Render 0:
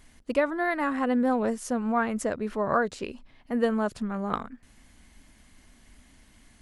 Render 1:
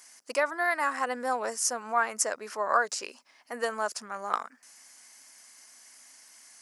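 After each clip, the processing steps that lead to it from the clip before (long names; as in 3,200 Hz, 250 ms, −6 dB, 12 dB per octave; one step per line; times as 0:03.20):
high-pass filter 810 Hz 12 dB per octave
high shelf with overshoot 4,400 Hz +6 dB, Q 3
level +3.5 dB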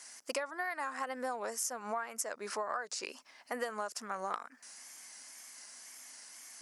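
tape wow and flutter 73 cents
downward compressor 16 to 1, threshold −35 dBFS, peak gain reduction 17 dB
level +2 dB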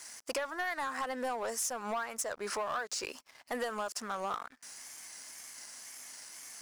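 leveller curve on the samples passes 3
level −7 dB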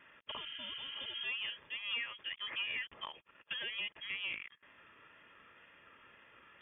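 healed spectral selection 0:00.34–0:01.21, 270–2,200 Hz before
voice inversion scrambler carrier 3,500 Hz
notch comb filter 750 Hz
level −2 dB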